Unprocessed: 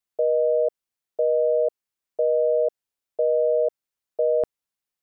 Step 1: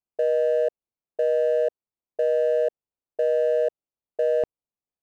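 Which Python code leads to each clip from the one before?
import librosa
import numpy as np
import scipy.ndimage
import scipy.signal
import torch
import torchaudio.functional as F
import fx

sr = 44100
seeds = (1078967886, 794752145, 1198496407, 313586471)

y = fx.wiener(x, sr, points=25)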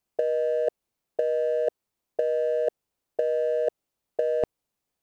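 y = fx.over_compress(x, sr, threshold_db=-26.0, ratio=-0.5)
y = y * 10.0 ** (4.0 / 20.0)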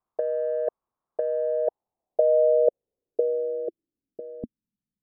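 y = fx.filter_sweep_lowpass(x, sr, from_hz=1100.0, to_hz=200.0, start_s=1.17, end_s=4.83, q=4.1)
y = y * 10.0 ** (-4.0 / 20.0)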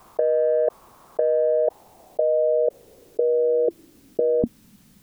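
y = fx.env_flatten(x, sr, amount_pct=100)
y = y * 10.0 ** (-3.0 / 20.0)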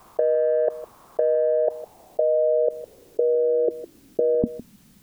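y = x + 10.0 ** (-15.5 / 20.0) * np.pad(x, (int(157 * sr / 1000.0), 0))[:len(x)]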